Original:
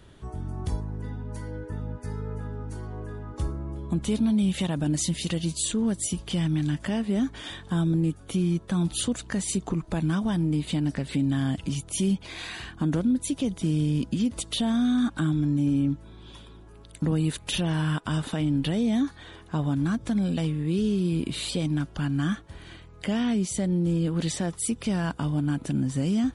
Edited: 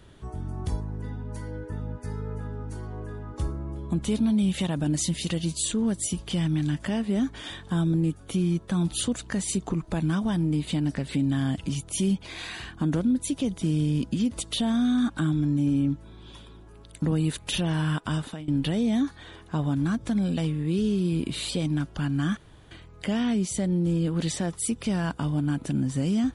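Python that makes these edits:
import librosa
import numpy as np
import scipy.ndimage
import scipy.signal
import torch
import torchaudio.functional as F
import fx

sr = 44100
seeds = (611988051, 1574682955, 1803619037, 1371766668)

y = fx.edit(x, sr, fx.fade_out_to(start_s=18.12, length_s=0.36, floor_db=-20.0),
    fx.room_tone_fill(start_s=22.37, length_s=0.34), tone=tone)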